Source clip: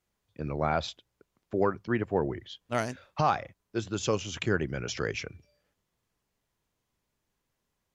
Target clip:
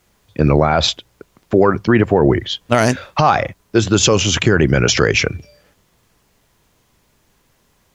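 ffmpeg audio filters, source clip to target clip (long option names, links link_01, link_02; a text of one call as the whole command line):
ffmpeg -i in.wav -af "alimiter=level_in=22.5dB:limit=-1dB:release=50:level=0:latency=1,volume=-1dB" out.wav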